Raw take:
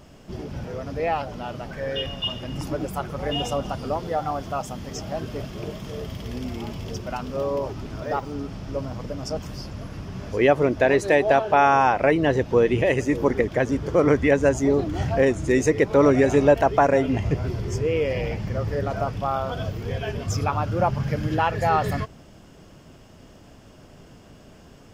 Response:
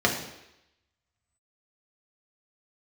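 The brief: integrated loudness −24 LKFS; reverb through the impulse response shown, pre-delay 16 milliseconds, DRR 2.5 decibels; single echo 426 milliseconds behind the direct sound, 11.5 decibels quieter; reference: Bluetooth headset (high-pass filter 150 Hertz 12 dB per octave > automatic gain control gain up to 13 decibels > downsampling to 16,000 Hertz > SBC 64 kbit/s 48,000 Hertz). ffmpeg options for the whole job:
-filter_complex "[0:a]aecho=1:1:426:0.266,asplit=2[link_01][link_02];[1:a]atrim=start_sample=2205,adelay=16[link_03];[link_02][link_03]afir=irnorm=-1:irlink=0,volume=-17.5dB[link_04];[link_01][link_04]amix=inputs=2:normalize=0,highpass=150,dynaudnorm=maxgain=13dB,aresample=16000,aresample=44100,volume=-4.5dB" -ar 48000 -c:a sbc -b:a 64k

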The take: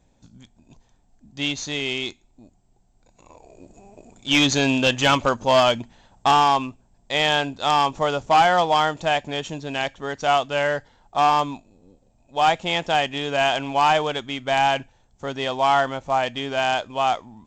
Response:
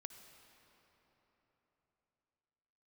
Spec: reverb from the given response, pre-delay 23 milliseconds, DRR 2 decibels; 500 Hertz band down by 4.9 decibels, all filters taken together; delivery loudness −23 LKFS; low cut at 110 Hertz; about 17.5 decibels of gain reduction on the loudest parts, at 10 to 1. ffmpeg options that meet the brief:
-filter_complex "[0:a]highpass=110,equalizer=frequency=500:width_type=o:gain=-7,acompressor=threshold=-33dB:ratio=10,asplit=2[link_01][link_02];[1:a]atrim=start_sample=2205,adelay=23[link_03];[link_02][link_03]afir=irnorm=-1:irlink=0,volume=3dB[link_04];[link_01][link_04]amix=inputs=2:normalize=0,volume=12dB"

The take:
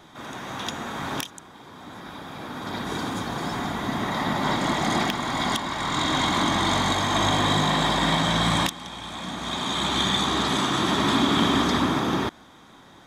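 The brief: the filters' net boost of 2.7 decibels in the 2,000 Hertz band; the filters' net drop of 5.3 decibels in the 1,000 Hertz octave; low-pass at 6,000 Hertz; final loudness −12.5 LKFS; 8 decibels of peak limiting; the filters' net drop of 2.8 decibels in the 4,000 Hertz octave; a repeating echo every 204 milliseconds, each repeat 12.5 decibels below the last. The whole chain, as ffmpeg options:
ffmpeg -i in.wav -af "lowpass=6000,equalizer=frequency=1000:width_type=o:gain=-8,equalizer=frequency=2000:width_type=o:gain=6.5,equalizer=frequency=4000:width_type=o:gain=-4.5,alimiter=limit=-17.5dB:level=0:latency=1,aecho=1:1:204|408|612:0.237|0.0569|0.0137,volume=15dB" out.wav

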